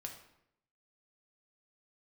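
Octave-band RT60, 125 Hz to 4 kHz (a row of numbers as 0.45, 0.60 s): 0.90, 0.85, 0.80, 0.70, 0.70, 0.55 s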